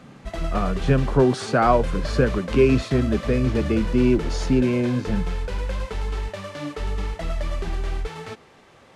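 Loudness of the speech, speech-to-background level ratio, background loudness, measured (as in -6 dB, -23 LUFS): -22.0 LUFS, 8.0 dB, -30.0 LUFS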